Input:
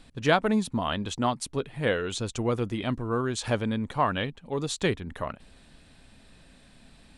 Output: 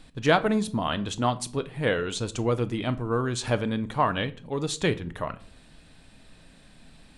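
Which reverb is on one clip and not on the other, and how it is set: simulated room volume 430 m³, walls furnished, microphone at 0.51 m; trim +1 dB

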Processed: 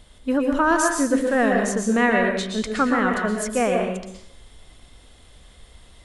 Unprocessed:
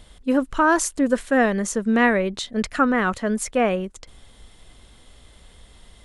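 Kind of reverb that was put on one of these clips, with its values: plate-style reverb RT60 0.68 s, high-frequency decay 0.9×, pre-delay 105 ms, DRR 1.5 dB; trim -2 dB

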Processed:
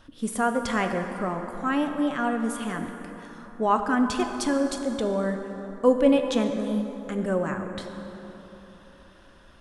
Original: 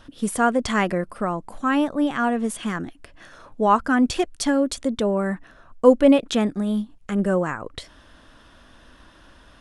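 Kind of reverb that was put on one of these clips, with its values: plate-style reverb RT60 3.8 s, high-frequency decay 0.5×, DRR 5 dB; trim -5 dB

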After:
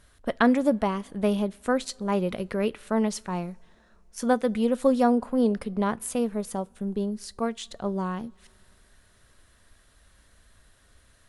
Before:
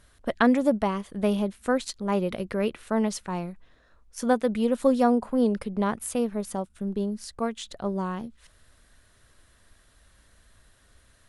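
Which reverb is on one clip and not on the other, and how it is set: two-slope reverb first 0.24 s, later 3.2 s, from -22 dB, DRR 19 dB

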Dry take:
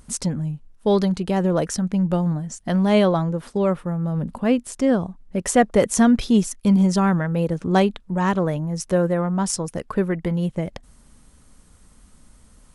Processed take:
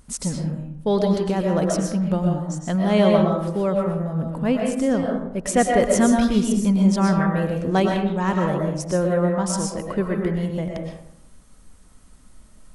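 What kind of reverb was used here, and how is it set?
algorithmic reverb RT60 0.79 s, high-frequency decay 0.5×, pre-delay 80 ms, DRR 0.5 dB; trim -2.5 dB

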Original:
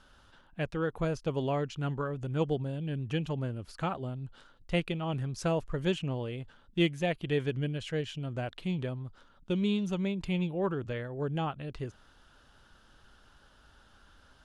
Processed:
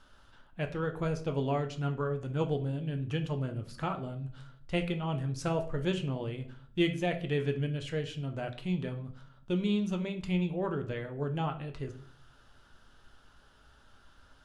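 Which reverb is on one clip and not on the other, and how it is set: simulated room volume 52 m³, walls mixed, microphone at 0.33 m; trim -2 dB

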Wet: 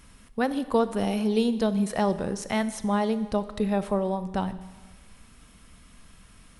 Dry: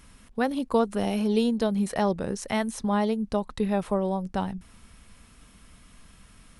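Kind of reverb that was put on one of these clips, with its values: Schroeder reverb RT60 1.4 s, combs from 29 ms, DRR 13 dB

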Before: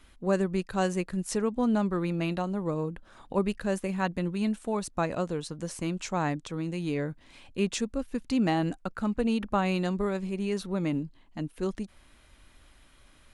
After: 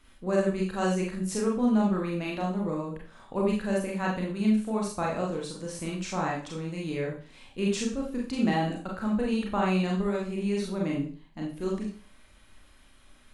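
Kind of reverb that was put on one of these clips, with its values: Schroeder reverb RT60 0.4 s, combs from 29 ms, DRR -2.5 dB; trim -4 dB

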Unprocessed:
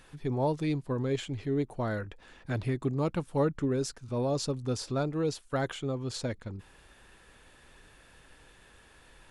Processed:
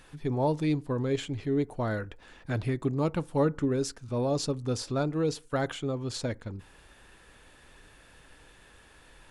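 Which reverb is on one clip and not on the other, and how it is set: FDN reverb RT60 0.37 s, low-frequency decay 0.95×, high-frequency decay 0.35×, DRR 19 dB; trim +1.5 dB

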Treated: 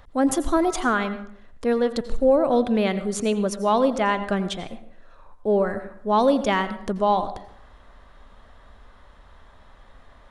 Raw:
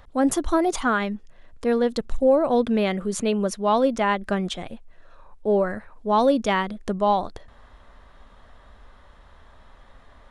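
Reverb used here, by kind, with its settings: plate-style reverb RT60 0.65 s, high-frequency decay 0.6×, pre-delay 75 ms, DRR 12 dB

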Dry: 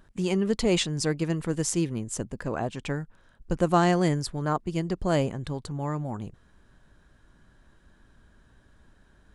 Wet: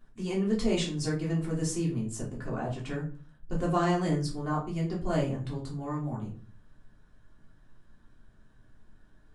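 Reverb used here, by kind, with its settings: simulated room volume 240 m³, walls furnished, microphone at 3.3 m; trim -11.5 dB

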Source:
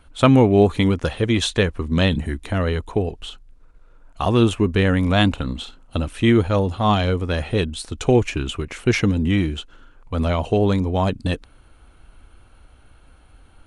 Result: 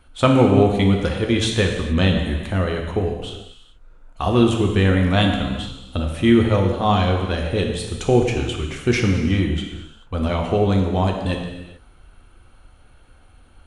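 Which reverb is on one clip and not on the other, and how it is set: gated-style reverb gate 460 ms falling, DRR 1.5 dB; trim -2 dB

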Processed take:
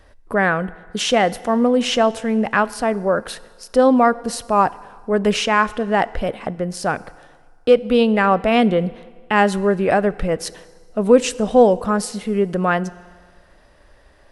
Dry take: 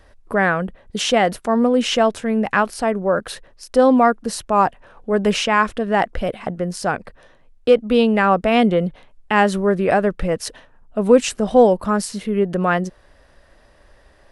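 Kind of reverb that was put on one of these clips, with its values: FDN reverb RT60 1.7 s, low-frequency decay 0.9×, high-frequency decay 0.9×, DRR 18 dB

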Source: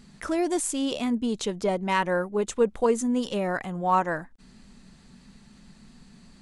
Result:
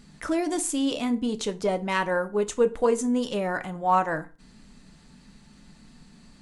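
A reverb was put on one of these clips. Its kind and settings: FDN reverb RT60 0.35 s, low-frequency decay 1×, high-frequency decay 0.8×, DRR 9 dB

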